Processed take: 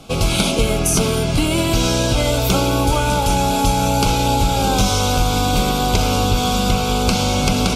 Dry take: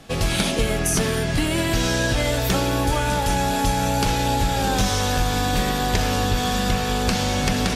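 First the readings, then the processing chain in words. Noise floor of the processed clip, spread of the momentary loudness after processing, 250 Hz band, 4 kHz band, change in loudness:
-19 dBFS, 1 LU, +4.5 dB, +4.5 dB, +4.0 dB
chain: Butterworth band-stop 1800 Hz, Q 2.9; gain +4.5 dB

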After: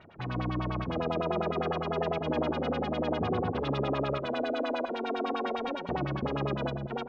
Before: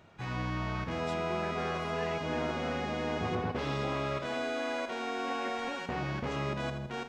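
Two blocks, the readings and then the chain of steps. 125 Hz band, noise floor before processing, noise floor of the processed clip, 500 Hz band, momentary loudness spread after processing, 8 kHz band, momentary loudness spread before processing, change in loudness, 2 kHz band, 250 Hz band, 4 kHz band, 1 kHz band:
+2.5 dB, -42 dBFS, -39 dBFS, +4.0 dB, 3 LU, under -10 dB, 3 LU, +2.5 dB, -2.5 dB, +4.0 dB, 0.0 dB, +2.0 dB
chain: dynamic EQ 2000 Hz, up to -8 dB, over -54 dBFS, Q 1.5; LFO low-pass sine 9.9 Hz 310–4000 Hz; gain +2 dB

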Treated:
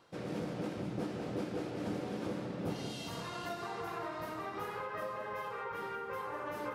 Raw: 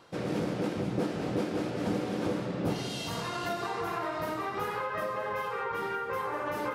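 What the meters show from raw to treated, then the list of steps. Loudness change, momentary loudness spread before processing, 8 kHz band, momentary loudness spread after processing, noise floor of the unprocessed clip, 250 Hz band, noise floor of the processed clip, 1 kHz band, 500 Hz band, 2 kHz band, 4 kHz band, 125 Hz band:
-7.0 dB, 2 LU, -7.5 dB, 2 LU, -36 dBFS, -7.0 dB, -43 dBFS, -7.0 dB, -7.0 dB, -7.5 dB, -7.5 dB, -6.5 dB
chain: echo with dull and thin repeats by turns 0.185 s, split 940 Hz, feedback 55%, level -8 dB; gain -7.5 dB

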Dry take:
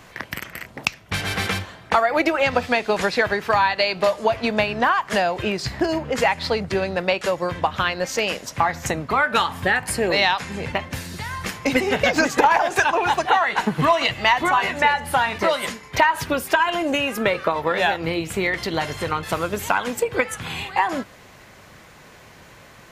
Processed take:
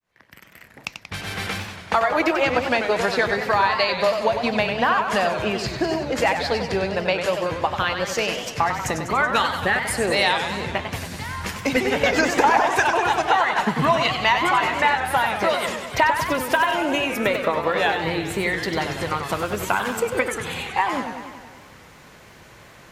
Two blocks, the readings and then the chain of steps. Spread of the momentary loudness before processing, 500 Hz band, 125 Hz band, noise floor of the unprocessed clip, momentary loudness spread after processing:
8 LU, 0.0 dB, -0.5 dB, -47 dBFS, 9 LU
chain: opening faded in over 2.06 s; warbling echo 95 ms, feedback 67%, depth 178 cents, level -7.5 dB; gain -1.5 dB

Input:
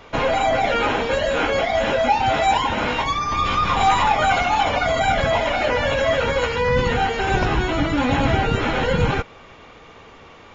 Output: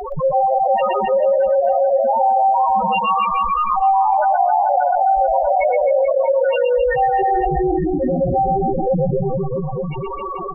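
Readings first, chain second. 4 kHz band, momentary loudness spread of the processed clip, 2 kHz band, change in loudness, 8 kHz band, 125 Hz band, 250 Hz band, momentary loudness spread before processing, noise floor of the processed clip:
under -10 dB, 6 LU, -9.5 dB, +2.5 dB, n/a, -2.0 dB, 0.0 dB, 3 LU, -26 dBFS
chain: comb 5.4 ms, depth 74%; loudest bins only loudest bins 1; low shelf 110 Hz -10 dB; reverse bouncing-ball echo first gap 0.12 s, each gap 1.2×, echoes 5; dynamic EQ 640 Hz, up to +6 dB, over -34 dBFS, Q 2.3; fast leveller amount 70%; gain -1 dB

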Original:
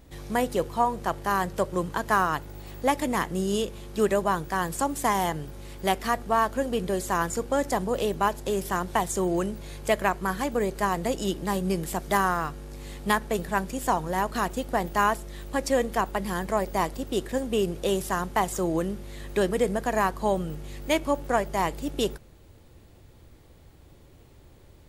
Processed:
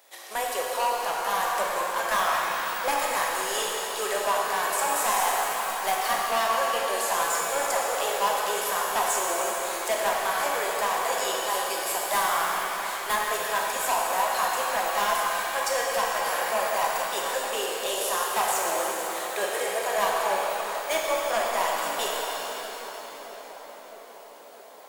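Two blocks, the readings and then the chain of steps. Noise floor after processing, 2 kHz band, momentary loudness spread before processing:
-44 dBFS, +4.0 dB, 6 LU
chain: HPF 570 Hz 24 dB/oct; high shelf 5700 Hz +5.5 dB; in parallel at -2.5 dB: level quantiser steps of 23 dB; on the sum: soft clip -22.5 dBFS, distortion -6 dB; on a send: tape echo 0.638 s, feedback 85%, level -11 dB, low-pass 1300 Hz; on the sum: shimmer reverb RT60 3.5 s, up +7 st, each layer -8 dB, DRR -3 dB

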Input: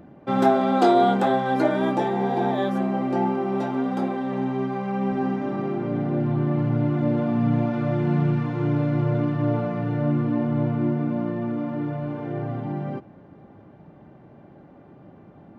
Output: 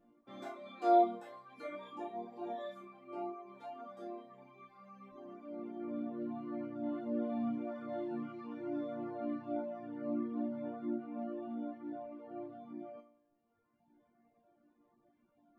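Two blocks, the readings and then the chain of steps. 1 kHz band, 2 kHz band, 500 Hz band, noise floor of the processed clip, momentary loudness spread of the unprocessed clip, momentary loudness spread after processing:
-14.0 dB, -21.5 dB, -14.5 dB, -75 dBFS, 9 LU, 15 LU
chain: resonator bank A#3 major, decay 0.75 s; reverb removal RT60 1.7 s; gain +3 dB

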